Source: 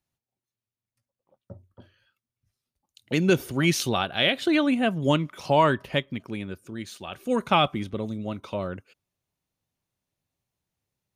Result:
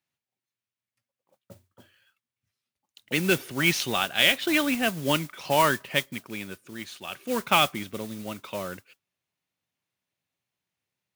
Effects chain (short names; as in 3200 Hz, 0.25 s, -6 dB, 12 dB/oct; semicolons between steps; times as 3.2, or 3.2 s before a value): HPF 120 Hz 12 dB/oct; bell 2300 Hz +8.5 dB 2 oct; modulation noise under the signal 12 dB; gain -4.5 dB